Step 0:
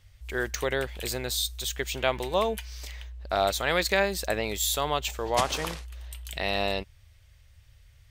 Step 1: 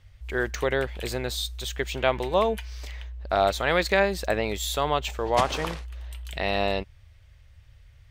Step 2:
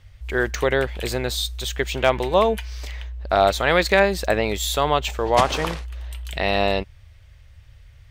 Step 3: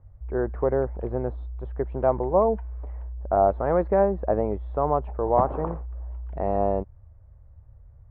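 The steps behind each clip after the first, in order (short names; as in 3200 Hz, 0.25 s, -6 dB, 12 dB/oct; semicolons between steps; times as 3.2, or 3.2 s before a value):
high shelf 4500 Hz -11.5 dB; gain +3.5 dB
hard clip -8.5 dBFS, distortion -36 dB; gain +5 dB
LPF 1000 Hz 24 dB/oct; gain -2 dB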